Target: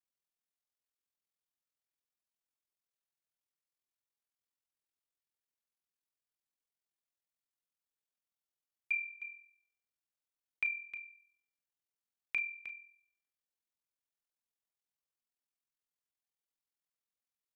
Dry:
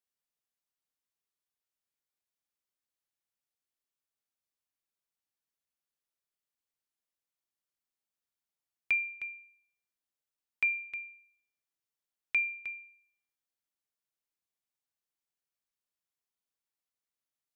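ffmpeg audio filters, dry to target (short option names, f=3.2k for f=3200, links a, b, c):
-filter_complex "[0:a]aeval=exprs='val(0)*sin(2*PI*21*n/s)':c=same,asplit=2[a][b];[b]adelay=36,volume=-11.5dB[c];[a][c]amix=inputs=2:normalize=0,volume=-3dB"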